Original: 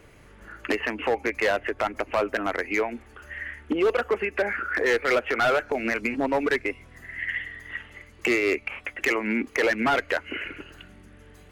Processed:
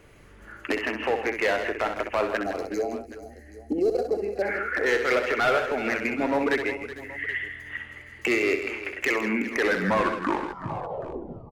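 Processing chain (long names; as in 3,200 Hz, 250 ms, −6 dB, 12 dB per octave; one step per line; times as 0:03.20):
turntable brake at the end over 2.02 s
gain on a spectral selection 0:02.42–0:04.42, 840–3,900 Hz −21 dB
multi-tap delay 64/132/160/372/448/776 ms −7.5/−19/−10/−14.5/−19.5/−18.5 dB
level −1.5 dB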